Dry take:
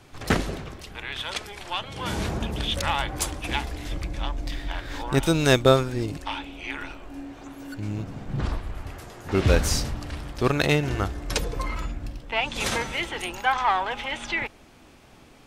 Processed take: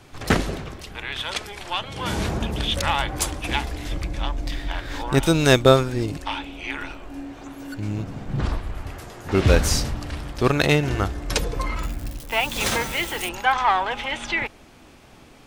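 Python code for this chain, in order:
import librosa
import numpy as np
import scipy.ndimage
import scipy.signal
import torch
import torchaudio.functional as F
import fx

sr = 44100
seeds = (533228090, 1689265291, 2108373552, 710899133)

y = fx.crossing_spikes(x, sr, level_db=-31.0, at=(11.83, 13.29))
y = F.gain(torch.from_numpy(y), 3.0).numpy()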